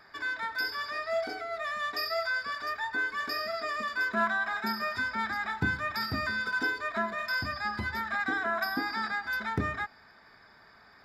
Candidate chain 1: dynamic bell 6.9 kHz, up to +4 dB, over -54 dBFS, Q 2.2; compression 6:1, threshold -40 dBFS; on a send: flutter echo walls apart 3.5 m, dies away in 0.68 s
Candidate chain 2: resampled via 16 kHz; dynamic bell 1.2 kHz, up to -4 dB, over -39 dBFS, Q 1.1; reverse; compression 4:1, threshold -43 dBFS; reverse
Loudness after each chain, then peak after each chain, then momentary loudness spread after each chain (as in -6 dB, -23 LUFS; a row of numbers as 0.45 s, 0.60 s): -37.5 LUFS, -43.5 LUFS; -25.5 dBFS, -32.0 dBFS; 5 LU, 2 LU